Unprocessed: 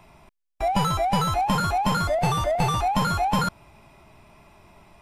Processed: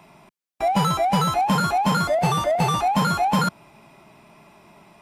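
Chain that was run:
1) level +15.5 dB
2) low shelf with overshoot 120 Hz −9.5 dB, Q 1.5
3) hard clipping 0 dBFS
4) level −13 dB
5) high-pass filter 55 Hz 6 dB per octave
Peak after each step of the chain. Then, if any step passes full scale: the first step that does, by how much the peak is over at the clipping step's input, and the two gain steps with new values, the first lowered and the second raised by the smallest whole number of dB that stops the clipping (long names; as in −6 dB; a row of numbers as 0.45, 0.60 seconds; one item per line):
+5.5, +5.5, 0.0, −13.0, −11.5 dBFS
step 1, 5.5 dB
step 1 +9.5 dB, step 4 −7 dB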